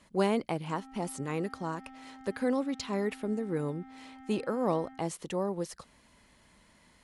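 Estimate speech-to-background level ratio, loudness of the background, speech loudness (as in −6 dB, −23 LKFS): 18.0 dB, −51.5 LKFS, −33.5 LKFS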